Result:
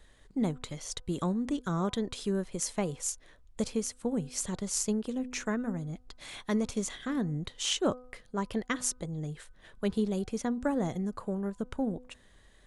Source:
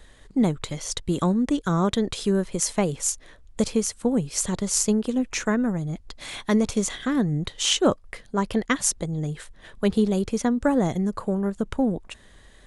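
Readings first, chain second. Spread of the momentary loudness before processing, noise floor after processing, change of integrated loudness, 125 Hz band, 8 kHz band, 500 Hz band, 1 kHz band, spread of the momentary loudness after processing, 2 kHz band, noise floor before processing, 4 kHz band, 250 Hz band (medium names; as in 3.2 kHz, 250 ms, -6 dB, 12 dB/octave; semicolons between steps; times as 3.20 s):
9 LU, -59 dBFS, -8.5 dB, -8.5 dB, -8.5 dB, -8.5 dB, -8.5 dB, 9 LU, -8.5 dB, -51 dBFS, -8.5 dB, -8.5 dB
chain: de-hum 250.6 Hz, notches 6; trim -8.5 dB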